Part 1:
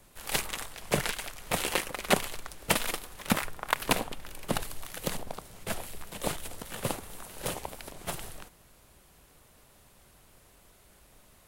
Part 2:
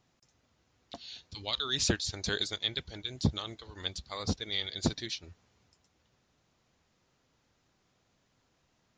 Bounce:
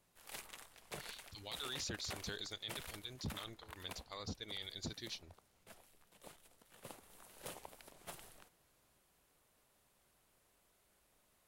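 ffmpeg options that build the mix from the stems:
ffmpeg -i stem1.wav -i stem2.wav -filter_complex "[0:a]lowshelf=frequency=170:gain=-8,volume=-7dB,afade=type=out:start_time=3.27:duration=0.62:silence=0.446684,afade=type=in:start_time=6.71:duration=0.56:silence=0.316228[link_01];[1:a]volume=-9dB[link_02];[link_01][link_02]amix=inputs=2:normalize=0,alimiter=level_in=9dB:limit=-24dB:level=0:latency=1:release=25,volume=-9dB" out.wav

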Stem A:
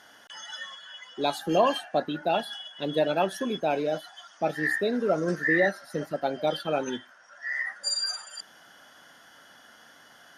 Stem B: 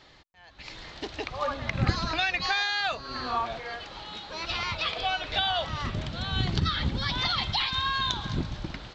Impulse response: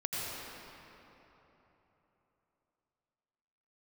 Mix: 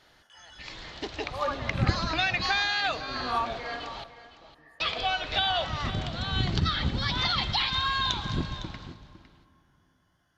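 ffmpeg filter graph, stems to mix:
-filter_complex "[0:a]acompressor=threshold=-37dB:ratio=2.5,flanger=delay=20:depth=5:speed=0.68,volume=-8.5dB,afade=type=out:start_time=3.75:duration=0.37:silence=0.281838,asplit=2[link_01][link_02];[link_02]volume=-17dB[link_03];[1:a]dynaudnorm=framelen=130:gausssize=7:maxgain=7.5dB,volume=-7.5dB,asplit=3[link_04][link_05][link_06];[link_04]atrim=end=4.04,asetpts=PTS-STARTPTS,afade=type=out:start_time=4.036:duration=0.004:curve=hsin[link_07];[link_05]atrim=start=4.04:end=4.8,asetpts=PTS-STARTPTS,volume=0[link_08];[link_06]atrim=start=4.8,asetpts=PTS-STARTPTS,afade=type=in:duration=0.004:curve=hsin[link_09];[link_07][link_08][link_09]concat=n=3:v=0:a=1,asplit=3[link_10][link_11][link_12];[link_11]volume=-21.5dB[link_13];[link_12]volume=-14dB[link_14];[2:a]atrim=start_sample=2205[link_15];[link_03][link_13]amix=inputs=2:normalize=0[link_16];[link_16][link_15]afir=irnorm=-1:irlink=0[link_17];[link_14]aecho=0:1:507:1[link_18];[link_01][link_10][link_17][link_18]amix=inputs=4:normalize=0"

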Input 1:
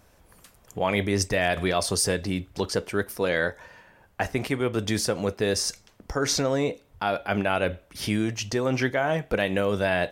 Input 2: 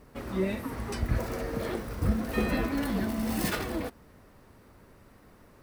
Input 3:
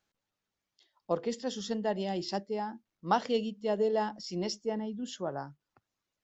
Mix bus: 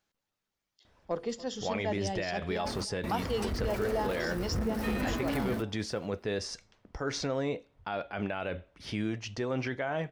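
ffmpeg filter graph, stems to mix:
ffmpeg -i stem1.wav -i stem2.wav -i stem3.wav -filter_complex "[0:a]lowpass=4600,adelay=850,volume=-7dB[link_01];[1:a]asoftclip=type=tanh:threshold=-27.5dB,adelay=2500,volume=0dB[link_02];[2:a]bandreject=frequency=47.4:width_type=h:width=4,bandreject=frequency=94.8:width_type=h:width=4,bandreject=frequency=142.2:width_type=h:width=4,asubboost=boost=5:cutoff=95,asoftclip=type=tanh:threshold=-18.5dB,volume=0dB,asplit=3[link_03][link_04][link_05];[link_04]volume=-20dB[link_06];[link_05]apad=whole_len=358515[link_07];[link_02][link_07]sidechaingate=range=-33dB:threshold=-52dB:ratio=16:detection=peak[link_08];[link_06]aecho=0:1:286:1[link_09];[link_01][link_08][link_03][link_09]amix=inputs=4:normalize=0,alimiter=limit=-22dB:level=0:latency=1:release=21" out.wav

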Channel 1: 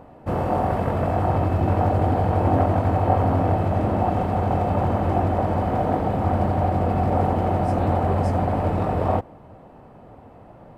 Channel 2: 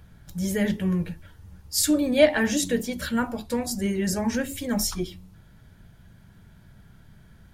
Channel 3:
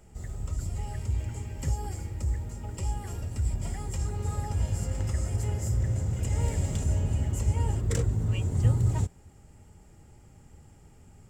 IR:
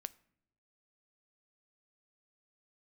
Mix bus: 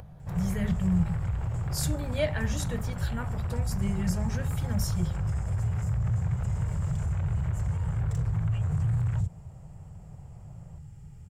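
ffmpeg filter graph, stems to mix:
-filter_complex "[0:a]aeval=exprs='0.531*(cos(1*acos(clip(val(0)/0.531,-1,1)))-cos(1*PI/2))+0.188*(cos(7*acos(clip(val(0)/0.531,-1,1)))-cos(7*PI/2))':channel_layout=same,volume=-17dB[link_01];[1:a]volume=-10dB[link_02];[2:a]asoftclip=type=hard:threshold=-21.5dB,adelay=200,volume=-4dB[link_03];[link_01][link_03]amix=inputs=2:normalize=0,acrossover=split=120|940[link_04][link_05][link_06];[link_04]acompressor=threshold=-35dB:ratio=4[link_07];[link_05]acompressor=threshold=-38dB:ratio=4[link_08];[link_06]acompressor=threshold=-44dB:ratio=4[link_09];[link_07][link_08][link_09]amix=inputs=3:normalize=0,alimiter=level_in=7.5dB:limit=-24dB:level=0:latency=1:release=51,volume=-7.5dB,volume=0dB[link_10];[link_02][link_10]amix=inputs=2:normalize=0,lowshelf=frequency=200:width_type=q:width=3:gain=9,acompressor=mode=upward:threshold=-43dB:ratio=2.5"

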